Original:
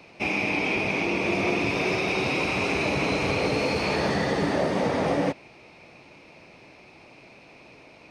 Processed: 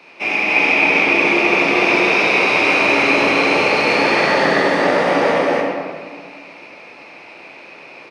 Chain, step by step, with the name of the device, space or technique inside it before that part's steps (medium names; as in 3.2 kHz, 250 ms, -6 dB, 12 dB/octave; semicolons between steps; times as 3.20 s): stadium PA (high-pass 240 Hz 12 dB/octave; peaking EQ 1.7 kHz +8 dB 2.7 oct; loudspeakers at several distances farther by 77 m -9 dB, 99 m 0 dB; reverberation RT60 1.8 s, pre-delay 11 ms, DRR -3 dB); trim -1.5 dB